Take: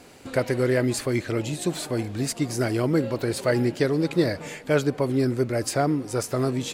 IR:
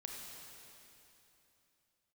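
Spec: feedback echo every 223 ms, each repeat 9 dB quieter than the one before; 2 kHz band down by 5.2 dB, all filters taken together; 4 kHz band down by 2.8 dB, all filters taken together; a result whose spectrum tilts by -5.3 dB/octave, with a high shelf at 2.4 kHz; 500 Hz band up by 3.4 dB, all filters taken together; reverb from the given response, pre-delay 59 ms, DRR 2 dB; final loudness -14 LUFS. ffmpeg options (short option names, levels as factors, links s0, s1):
-filter_complex "[0:a]equalizer=f=500:t=o:g=4.5,equalizer=f=2000:t=o:g=-8.5,highshelf=f=2400:g=6.5,equalizer=f=4000:t=o:g=-8,aecho=1:1:223|446|669|892:0.355|0.124|0.0435|0.0152,asplit=2[s0][s1];[1:a]atrim=start_sample=2205,adelay=59[s2];[s1][s2]afir=irnorm=-1:irlink=0,volume=1[s3];[s0][s3]amix=inputs=2:normalize=0,volume=2.11"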